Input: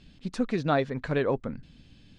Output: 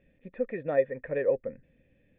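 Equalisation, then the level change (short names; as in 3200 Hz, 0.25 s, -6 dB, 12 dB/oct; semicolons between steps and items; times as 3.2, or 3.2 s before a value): vocal tract filter e; +7.0 dB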